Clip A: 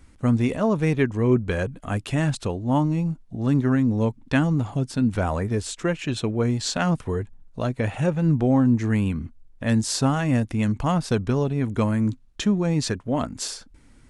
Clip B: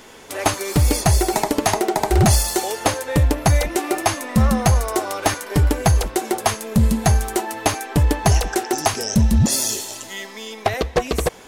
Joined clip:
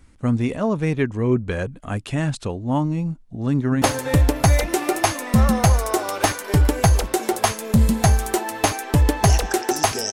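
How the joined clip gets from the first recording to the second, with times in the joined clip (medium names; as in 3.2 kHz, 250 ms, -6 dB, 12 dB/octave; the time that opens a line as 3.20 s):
clip A
3.54–3.82 s: echo throw 170 ms, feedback 65%, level -12.5 dB
3.82 s: go over to clip B from 2.84 s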